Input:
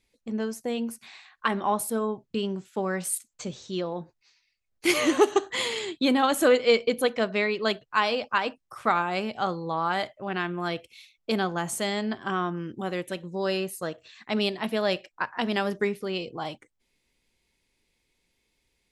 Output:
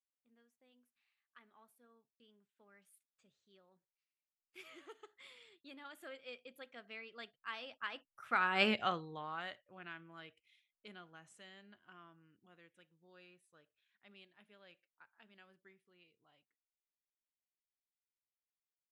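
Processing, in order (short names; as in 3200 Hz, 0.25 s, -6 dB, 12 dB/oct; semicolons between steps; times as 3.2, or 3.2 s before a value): Doppler pass-by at 8.69, 21 m/s, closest 1.8 m; band shelf 2100 Hz +8 dB; gain -2.5 dB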